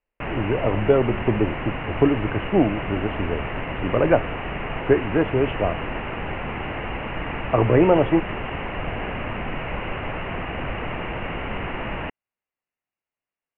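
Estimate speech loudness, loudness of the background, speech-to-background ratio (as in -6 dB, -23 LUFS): -22.0 LUFS, -29.5 LUFS, 7.5 dB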